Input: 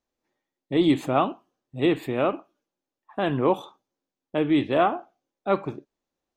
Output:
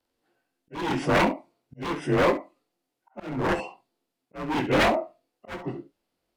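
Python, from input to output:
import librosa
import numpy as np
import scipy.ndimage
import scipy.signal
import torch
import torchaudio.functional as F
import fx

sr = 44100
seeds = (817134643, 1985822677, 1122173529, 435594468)

p1 = fx.partial_stretch(x, sr, pct=90)
p2 = 10.0 ** (-23.0 / 20.0) * (np.abs((p1 / 10.0 ** (-23.0 / 20.0) + 3.0) % 4.0 - 2.0) - 1.0)
p3 = p2 + fx.room_early_taps(p2, sr, ms=(23, 68), db=(-10.0, -15.0), dry=0)
p4 = fx.auto_swell(p3, sr, attack_ms=454.0)
y = p4 * librosa.db_to_amplitude(8.0)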